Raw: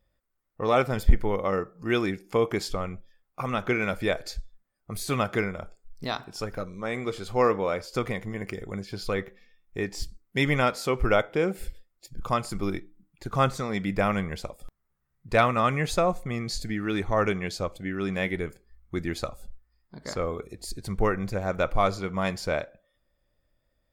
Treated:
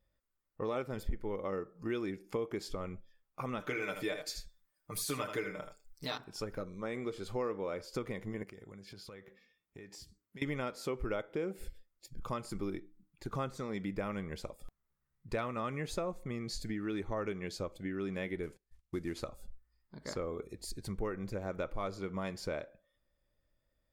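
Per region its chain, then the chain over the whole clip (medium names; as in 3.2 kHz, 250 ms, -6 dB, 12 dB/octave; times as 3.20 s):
3.60–6.18 s: tilt EQ +2 dB/octave + comb 6.7 ms, depth 85% + delay 79 ms -9 dB
8.43–10.42 s: high-pass 86 Hz + compression 8:1, threshold -41 dBFS
18.43–19.24 s: CVSD coder 64 kbps + gate -52 dBFS, range -19 dB
whole clip: band-stop 720 Hz, Q 12; dynamic bell 340 Hz, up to +6 dB, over -40 dBFS, Q 0.98; compression 3:1, threshold -30 dBFS; trim -6 dB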